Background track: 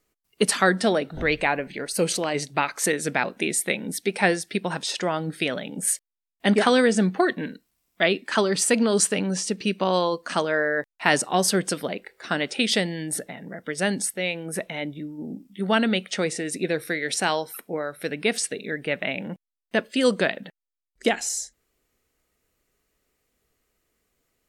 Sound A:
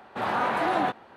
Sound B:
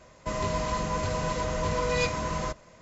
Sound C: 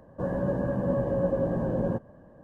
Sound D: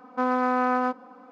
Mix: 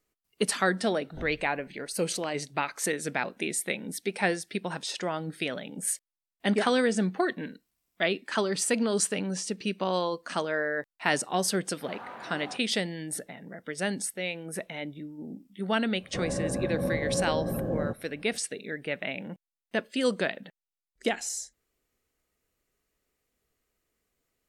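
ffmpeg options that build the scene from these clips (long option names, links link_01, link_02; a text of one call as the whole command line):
ffmpeg -i bed.wav -i cue0.wav -i cue1.wav -i cue2.wav -filter_complex "[0:a]volume=-6dB[link_01];[3:a]asuperstop=centerf=930:order=4:qfactor=6.6[link_02];[1:a]atrim=end=1.16,asetpts=PTS-STARTPTS,volume=-17dB,afade=type=in:duration=0.004:curve=hsin,afade=type=out:start_time=1.156:duration=0.004:curve=hsin,adelay=11660[link_03];[link_02]atrim=end=2.43,asetpts=PTS-STARTPTS,volume=-3dB,afade=type=in:duration=0.004:curve=hsin,afade=type=out:start_time=2.426:duration=0.004:curve=hsin,adelay=15950[link_04];[link_01][link_03][link_04]amix=inputs=3:normalize=0" out.wav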